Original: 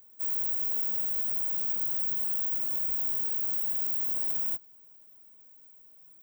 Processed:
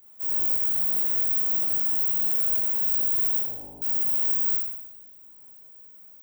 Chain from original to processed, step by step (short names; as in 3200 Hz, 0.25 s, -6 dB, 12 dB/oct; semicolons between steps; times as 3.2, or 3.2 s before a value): 3.39–3.82 elliptic low-pass 870 Hz; on a send: flutter echo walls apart 3.3 m, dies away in 0.93 s